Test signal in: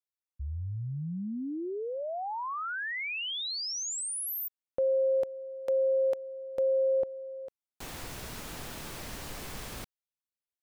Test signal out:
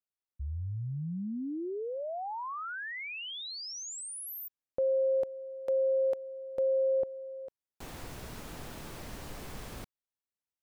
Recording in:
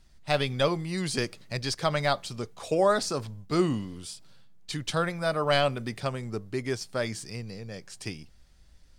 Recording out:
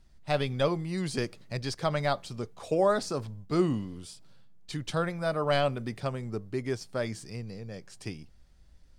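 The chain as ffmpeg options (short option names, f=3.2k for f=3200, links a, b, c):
-af "tiltshelf=f=1.3k:g=3,volume=-3.5dB"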